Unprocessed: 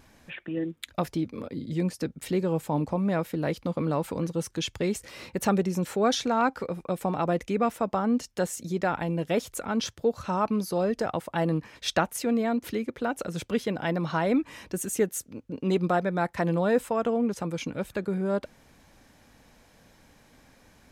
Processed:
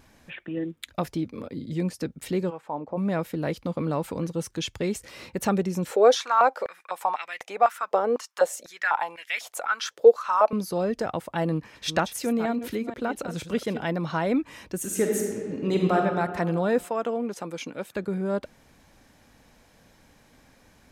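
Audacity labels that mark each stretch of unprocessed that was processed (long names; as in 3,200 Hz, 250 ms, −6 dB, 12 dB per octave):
2.490000	2.960000	resonant band-pass 1,600 Hz → 470 Hz, Q 1.2
5.910000	10.530000	high-pass on a step sequencer 4 Hz 480–2,100 Hz
11.500000	13.880000	delay that plays each chunk backwards 240 ms, level −10.5 dB
14.770000	15.960000	thrown reverb, RT60 2 s, DRR −0.5 dB
16.850000	17.960000	Bessel high-pass filter 300 Hz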